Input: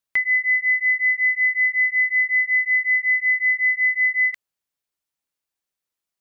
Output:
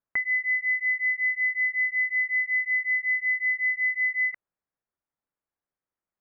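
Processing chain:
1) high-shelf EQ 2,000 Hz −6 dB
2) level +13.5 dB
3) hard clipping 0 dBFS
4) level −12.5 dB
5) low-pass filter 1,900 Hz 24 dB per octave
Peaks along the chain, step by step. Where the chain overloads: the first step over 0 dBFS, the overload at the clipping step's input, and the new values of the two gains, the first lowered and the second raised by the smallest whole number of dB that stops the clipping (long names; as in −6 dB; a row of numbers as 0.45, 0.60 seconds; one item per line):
−16.0, −2.5, −2.5, −15.0, −18.5 dBFS
no step passes full scale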